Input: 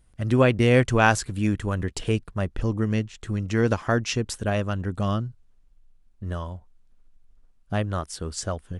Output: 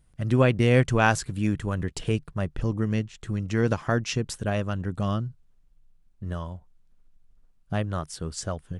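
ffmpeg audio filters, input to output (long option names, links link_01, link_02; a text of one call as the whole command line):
ffmpeg -i in.wav -af "equalizer=frequency=150:width_type=o:width=0.35:gain=8.5,volume=-2.5dB" out.wav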